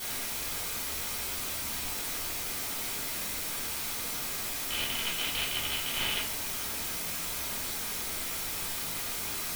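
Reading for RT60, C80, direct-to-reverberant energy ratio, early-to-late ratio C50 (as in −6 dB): 0.45 s, 11.0 dB, −8.5 dB, 6.5 dB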